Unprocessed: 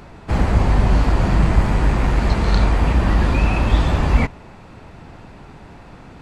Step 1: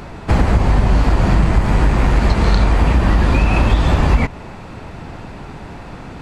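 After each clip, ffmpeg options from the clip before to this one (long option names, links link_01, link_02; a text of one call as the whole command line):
ffmpeg -i in.wav -af "acompressor=threshold=-17dB:ratio=6,volume=8dB" out.wav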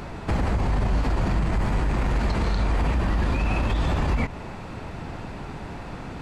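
ffmpeg -i in.wav -af "alimiter=limit=-12.5dB:level=0:latency=1:release=50,volume=-3dB" out.wav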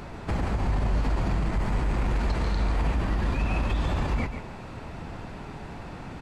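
ffmpeg -i in.wav -af "aecho=1:1:141:0.376,volume=-4dB" out.wav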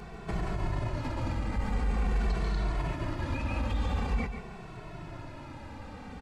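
ffmpeg -i in.wav -filter_complex "[0:a]asplit=2[link_01][link_02];[link_02]adelay=2.2,afreqshift=-0.46[link_03];[link_01][link_03]amix=inputs=2:normalize=1,volume=-1.5dB" out.wav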